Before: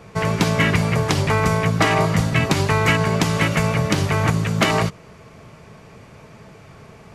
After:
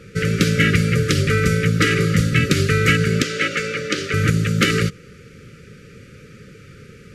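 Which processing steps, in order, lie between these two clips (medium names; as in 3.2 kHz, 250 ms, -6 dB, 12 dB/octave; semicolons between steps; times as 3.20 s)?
brick-wall FIR band-stop 570–1200 Hz; 3.22–4.14 s: three-band isolator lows -20 dB, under 280 Hz, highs -16 dB, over 7.5 kHz; trim +2 dB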